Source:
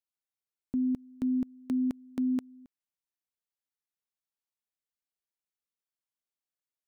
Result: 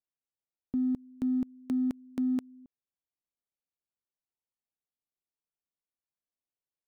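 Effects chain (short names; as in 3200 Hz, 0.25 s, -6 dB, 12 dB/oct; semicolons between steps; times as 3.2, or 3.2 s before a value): Wiener smoothing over 25 samples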